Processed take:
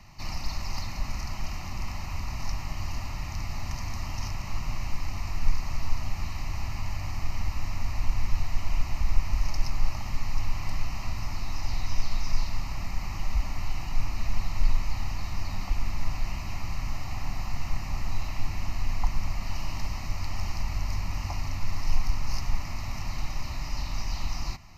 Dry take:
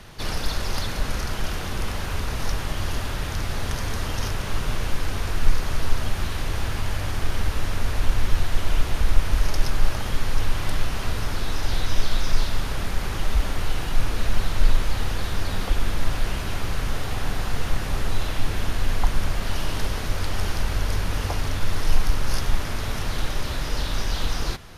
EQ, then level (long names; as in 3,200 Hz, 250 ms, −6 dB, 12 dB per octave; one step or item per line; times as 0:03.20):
phaser with its sweep stopped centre 2,300 Hz, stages 8
−5.0 dB